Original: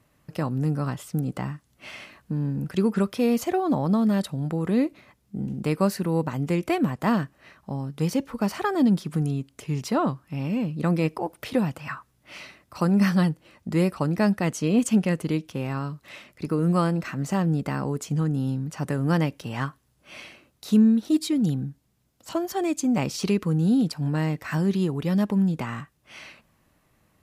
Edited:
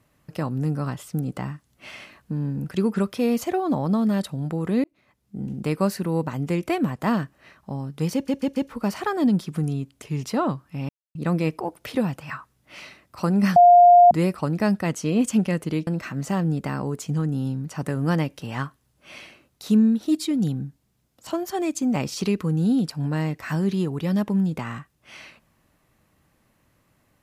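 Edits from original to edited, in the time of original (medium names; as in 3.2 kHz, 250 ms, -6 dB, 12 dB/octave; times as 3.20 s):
4.84–5.49 s: fade in
8.14 s: stutter 0.14 s, 4 plays
10.47–10.73 s: mute
13.14–13.69 s: bleep 705 Hz -8 dBFS
15.45–16.89 s: delete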